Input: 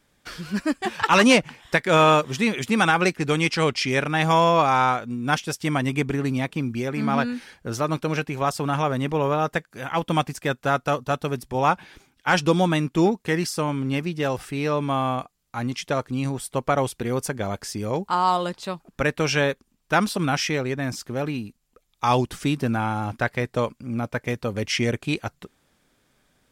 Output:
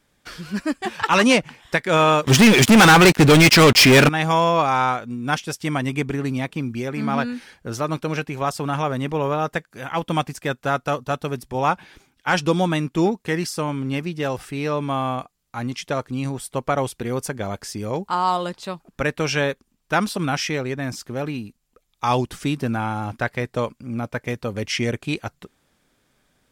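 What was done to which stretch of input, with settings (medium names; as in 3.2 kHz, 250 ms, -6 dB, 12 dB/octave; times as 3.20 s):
2.27–4.09 s: waveshaping leveller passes 5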